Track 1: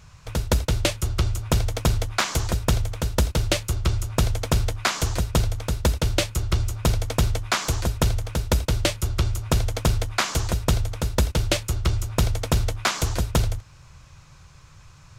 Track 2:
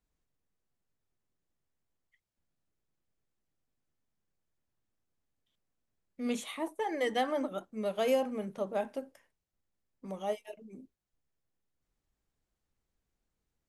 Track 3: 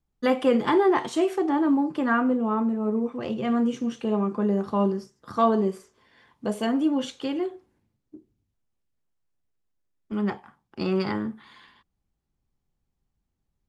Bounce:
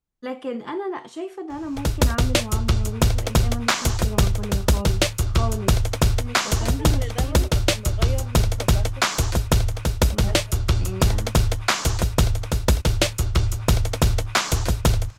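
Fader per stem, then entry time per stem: +2.5, −4.5, −8.5 decibels; 1.50, 0.00, 0.00 seconds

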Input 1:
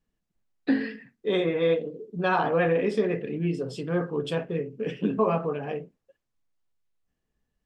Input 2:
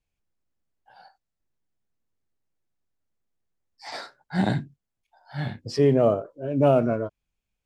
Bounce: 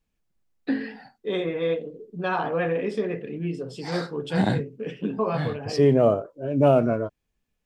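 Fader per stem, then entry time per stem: −2.0, +1.0 decibels; 0.00, 0.00 seconds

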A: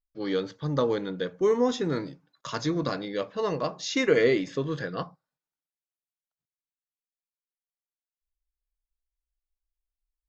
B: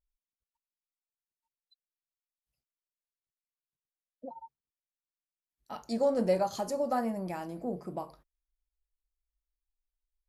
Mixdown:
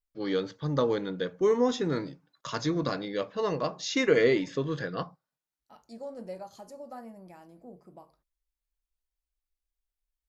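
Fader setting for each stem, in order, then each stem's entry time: −1.0, −13.0 decibels; 0.00, 0.00 seconds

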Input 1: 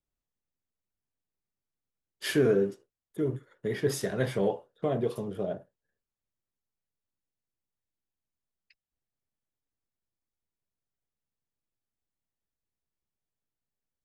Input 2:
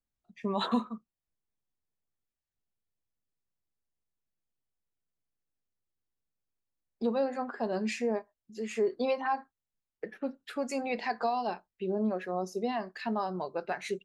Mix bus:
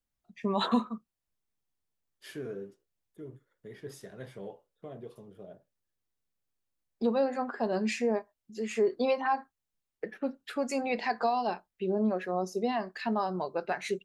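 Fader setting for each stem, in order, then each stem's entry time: −15.5, +2.0 decibels; 0.00, 0.00 seconds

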